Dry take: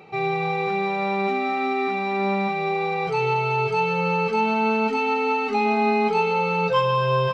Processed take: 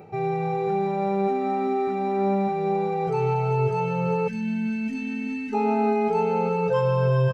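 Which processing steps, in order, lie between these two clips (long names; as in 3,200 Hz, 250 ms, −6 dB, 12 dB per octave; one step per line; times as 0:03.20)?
parametric band 2,200 Hz −13 dB 2.4 octaves
notch filter 1,100 Hz, Q 6.9
single-tap delay 398 ms −8.5 dB
gain on a spectral selection 0:04.28–0:05.53, 330–1,500 Hz −24 dB
reversed playback
upward compression, threshold −26 dBFS
reversed playback
graphic EQ with 15 bands 100 Hz +10 dB, 630 Hz +4 dB, 1,600 Hz +7 dB, 4,000 Hz −7 dB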